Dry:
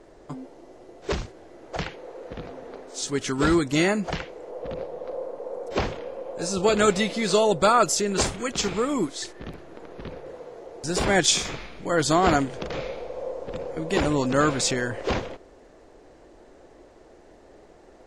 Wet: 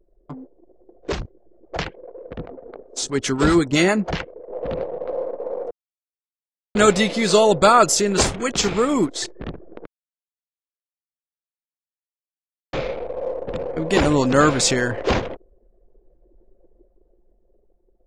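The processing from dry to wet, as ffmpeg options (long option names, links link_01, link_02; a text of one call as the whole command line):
ffmpeg -i in.wav -filter_complex "[0:a]asettb=1/sr,asplit=3[link_01][link_02][link_03];[link_01]atrim=end=1.094[link_04];[link_02]atrim=start=1.09:end=4.53,asetpts=PTS-STARTPTS,afade=type=in:duration=0.004:curve=qsin,afade=type=out:start_time=3.436:duration=0.004:curve=qsin,acrossover=split=550[link_05][link_06];[link_05]aeval=exprs='val(0)*(1-0.5/2+0.5/2*cos(2*PI*7.6*n/s))':channel_layout=same[link_07];[link_06]aeval=exprs='val(0)*(1-0.5/2-0.5/2*cos(2*PI*7.6*n/s))':channel_layout=same[link_08];[link_07][link_08]amix=inputs=2:normalize=0[link_09];[link_03]atrim=start=4.526[link_10];[link_04][link_09]acrossfade=duration=0.004:curve1=hsin:curve2=qsin[link_11];[link_11][link_10]acrossfade=duration=0.004:curve1=qsin:curve2=hsin,asplit=5[link_12][link_13][link_14][link_15][link_16];[link_12]atrim=end=5.71,asetpts=PTS-STARTPTS,afade=type=out:start_time=5.706:duration=0.004:curve=hsin[link_17];[link_13]atrim=start=5.71:end=6.75,asetpts=PTS-STARTPTS,volume=0[link_18];[link_14]atrim=start=6.75:end=9.86,asetpts=PTS-STARTPTS,afade=type=in:duration=0.004:curve=hsin,afade=type=out:start_time=3.106:duration=0.004:curve=hsin[link_19];[link_15]atrim=start=9.86:end=12.73,asetpts=PTS-STARTPTS,volume=0[link_20];[link_16]atrim=start=12.73,asetpts=PTS-STARTPTS,afade=type=in:duration=0.004:curve=hsin[link_21];[link_17][link_18][link_19][link_20][link_21]concat=n=5:v=0:a=1,anlmdn=1,dynaudnorm=framelen=140:gausssize=17:maxgain=6dB,volume=1dB" out.wav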